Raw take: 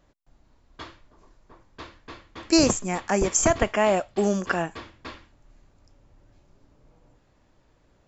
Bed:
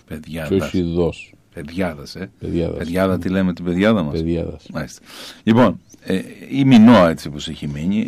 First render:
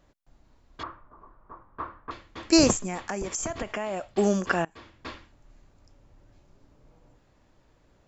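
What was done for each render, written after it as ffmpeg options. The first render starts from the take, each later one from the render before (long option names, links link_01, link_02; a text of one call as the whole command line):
ffmpeg -i in.wav -filter_complex "[0:a]asettb=1/sr,asplit=3[link_01][link_02][link_03];[link_01]atrim=end=0.834[link_04];[link_02]atrim=start=0.83:end=2.11,asetpts=PTS-STARTPTS,afade=type=in:duration=0.004:curve=qsin,afade=type=out:start_time=1.276:duration=0.004:curve=qsin,lowpass=frequency=1200:width_type=q:width=3.9[link_05];[link_03]atrim=start=2.106[link_06];[link_04][link_05]acrossfade=duration=0.004:curve1=hsin:curve2=qsin[link_07];[link_07][link_06]acrossfade=duration=0.004:curve1=qsin:curve2=hsin,asplit=3[link_08][link_09][link_10];[link_08]afade=type=out:start_time=2.76:duration=0.02[link_11];[link_09]acompressor=threshold=-27dB:ratio=12:attack=3.2:release=140:knee=1:detection=peak,afade=type=in:start_time=2.76:duration=0.02,afade=type=out:start_time=4.07:duration=0.02[link_12];[link_10]afade=type=in:start_time=4.07:duration=0.02[link_13];[link_11][link_12][link_13]amix=inputs=3:normalize=0,asplit=2[link_14][link_15];[link_14]atrim=end=4.65,asetpts=PTS-STARTPTS,afade=type=out:start_time=4.646:duration=0.004:curve=hsin:silence=0.0668344[link_16];[link_15]atrim=start=4.65,asetpts=PTS-STARTPTS,afade=type=in:duration=0.43:silence=0.0668344[link_17];[link_16][link_17]concat=n=2:v=0:a=1" out.wav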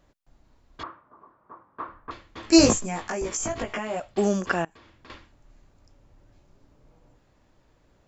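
ffmpeg -i in.wav -filter_complex "[0:a]asettb=1/sr,asplit=3[link_01][link_02][link_03];[link_01]atrim=end=0.844[link_04];[link_02]atrim=start=0.84:end=1.89,asetpts=PTS-STARTPTS,afade=type=in:duration=0.004:curve=qsin,afade=type=out:start_time=1.046:duration=0.004:curve=qsin,highpass=160,lowpass=5200[link_05];[link_03]atrim=start=1.886[link_06];[link_04][link_05]acrossfade=duration=0.004:curve1=hsin:curve2=qsin[link_07];[link_07][link_06]acrossfade=duration=0.004:curve1=qsin:curve2=hsin,asettb=1/sr,asplit=3[link_08][link_09][link_10];[link_08]atrim=end=2.424[link_11];[link_09]atrim=start=2.42:end=4,asetpts=PTS-STARTPTS,afade=type=in:duration=0.004:curve=qsin,afade=type=out:start_time=1.576:duration=0.004:curve=qsin,asplit=2[link_12][link_13];[link_13]adelay=18,volume=-2dB[link_14];[link_12][link_14]amix=inputs=2:normalize=0,atrim=end_sample=69678[link_15];[link_10]atrim=start=3.996[link_16];[link_11][link_15]acrossfade=duration=0.004:curve1=hsin:curve2=qsin[link_17];[link_17][link_16]acrossfade=duration=0.004:curve1=qsin:curve2=hsin,asettb=1/sr,asplit=3[link_18][link_19][link_20];[link_18]atrim=end=4.664[link_21];[link_19]atrim=start=4.66:end=5.1,asetpts=PTS-STARTPTS,afade=type=in:duration=0.004:curve=qsin,afade=type=out:start_time=0.436:duration=0.004:curve=qsin,acompressor=threshold=-49dB:ratio=4:attack=3.2:release=140:knee=1:detection=peak[link_22];[link_20]atrim=start=5.096[link_23];[link_21][link_22]acrossfade=duration=0.004:curve1=hsin:curve2=qsin[link_24];[link_24][link_23]acrossfade=duration=0.004:curve1=qsin:curve2=hsin" out.wav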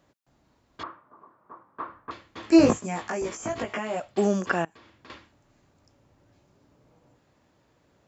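ffmpeg -i in.wav -filter_complex "[0:a]acrossover=split=2700[link_01][link_02];[link_02]acompressor=threshold=-39dB:ratio=4:attack=1:release=60[link_03];[link_01][link_03]amix=inputs=2:normalize=0,highpass=98" out.wav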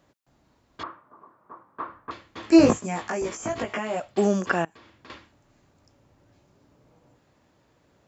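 ffmpeg -i in.wav -af "volume=1.5dB" out.wav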